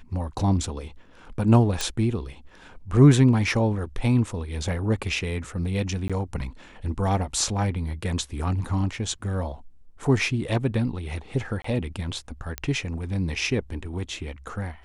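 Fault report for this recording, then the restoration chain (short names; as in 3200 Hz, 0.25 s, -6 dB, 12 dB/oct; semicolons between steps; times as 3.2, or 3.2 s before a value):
1.81 pop
6.08–6.1 gap 16 ms
11.62–11.64 gap 24 ms
12.58 pop -12 dBFS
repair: de-click; interpolate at 6.08, 16 ms; interpolate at 11.62, 24 ms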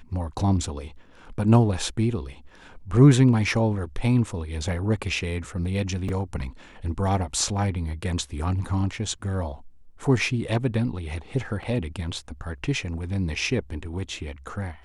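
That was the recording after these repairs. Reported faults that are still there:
none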